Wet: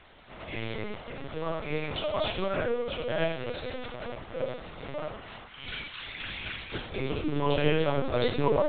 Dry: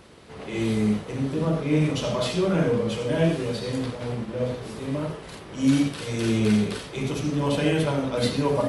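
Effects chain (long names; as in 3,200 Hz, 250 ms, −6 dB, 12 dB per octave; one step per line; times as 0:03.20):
high-pass filter 570 Hz 12 dB per octave, from 0:05.47 1,400 Hz, from 0:06.74 250 Hz
linear-prediction vocoder at 8 kHz pitch kept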